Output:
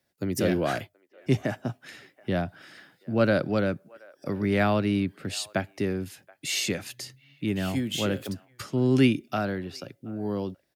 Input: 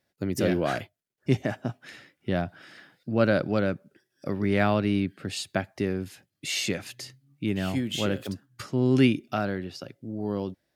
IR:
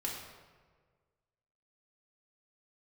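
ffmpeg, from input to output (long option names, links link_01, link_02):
-filter_complex "[0:a]acrossover=split=100|410|3100[link_01][link_02][link_03][link_04];[link_03]aecho=1:1:728:0.0668[link_05];[link_04]crystalizer=i=0.5:c=0[link_06];[link_01][link_02][link_05][link_06]amix=inputs=4:normalize=0"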